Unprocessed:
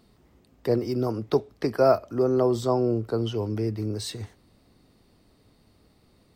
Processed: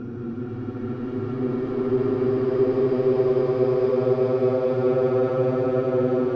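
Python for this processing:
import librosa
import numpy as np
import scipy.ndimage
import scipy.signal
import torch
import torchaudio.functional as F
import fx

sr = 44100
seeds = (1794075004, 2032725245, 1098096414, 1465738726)

p1 = fx.schmitt(x, sr, flips_db=-24.0)
p2 = x + F.gain(torch.from_numpy(p1), -10.0).numpy()
p3 = fx.paulstretch(p2, sr, seeds[0], factor=47.0, window_s=0.1, from_s=2.14)
p4 = fx.air_absorb(p3, sr, metres=230.0)
y = fx.echo_banded(p4, sr, ms=203, feedback_pct=81, hz=1900.0, wet_db=-6)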